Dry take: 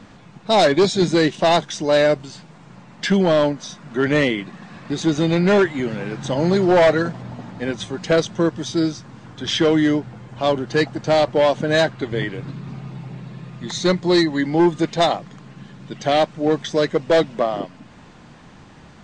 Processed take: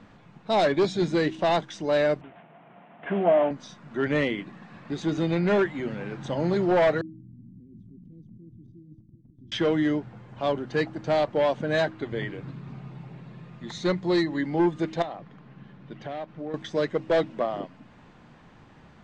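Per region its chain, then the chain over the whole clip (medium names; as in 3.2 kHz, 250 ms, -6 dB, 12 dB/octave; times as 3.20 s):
2.21–3.51 s: CVSD coder 16 kbps + high-pass 200 Hz + peaking EQ 690 Hz +14 dB 0.24 oct
7.01–9.52 s: inverse Chebyshev low-pass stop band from 560 Hz + level held to a coarse grid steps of 20 dB + delay 720 ms -12 dB
15.02–16.54 s: CVSD coder 64 kbps + compression 5:1, threshold -24 dBFS + distance through air 170 m
whole clip: tone controls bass 0 dB, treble -9 dB; de-hum 63.67 Hz, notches 5; trim -7 dB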